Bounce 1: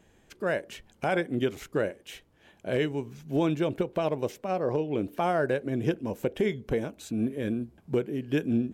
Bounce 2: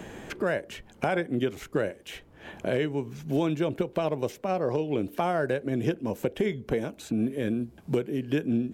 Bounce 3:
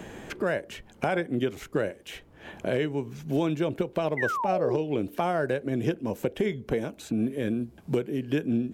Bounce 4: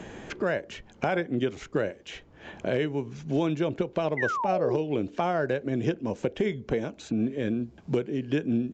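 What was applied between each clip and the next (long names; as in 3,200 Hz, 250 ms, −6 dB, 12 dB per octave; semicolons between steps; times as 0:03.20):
multiband upward and downward compressor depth 70%
sound drawn into the spectrogram fall, 0:04.17–0:04.77, 320–2,100 Hz −29 dBFS
downsampling to 16,000 Hz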